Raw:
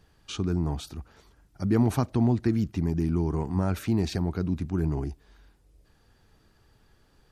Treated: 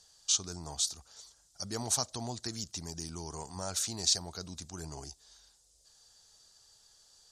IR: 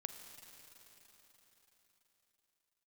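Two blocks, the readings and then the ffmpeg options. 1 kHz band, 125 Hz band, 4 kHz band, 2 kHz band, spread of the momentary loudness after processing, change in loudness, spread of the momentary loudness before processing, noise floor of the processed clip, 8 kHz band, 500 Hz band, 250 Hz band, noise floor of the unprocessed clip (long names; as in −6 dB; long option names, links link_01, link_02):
−6.0 dB, −17.5 dB, +9.0 dB, −7.5 dB, 15 LU, −6.5 dB, 11 LU, −67 dBFS, +15.5 dB, −12.0 dB, −18.5 dB, −63 dBFS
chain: -af "aexciter=amount=7.6:drive=4.9:freq=3500,lowpass=frequency=7100:width_type=q:width=2,lowshelf=frequency=430:width_type=q:width=1.5:gain=-9,volume=-8dB"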